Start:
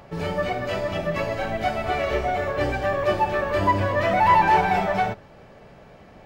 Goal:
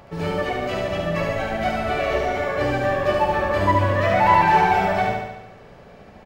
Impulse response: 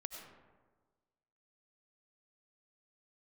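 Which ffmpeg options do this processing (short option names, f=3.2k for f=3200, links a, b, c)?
-af "aecho=1:1:72|144|216|288|360|432|504|576|648:0.668|0.401|0.241|0.144|0.0866|0.052|0.0312|0.0187|0.0112"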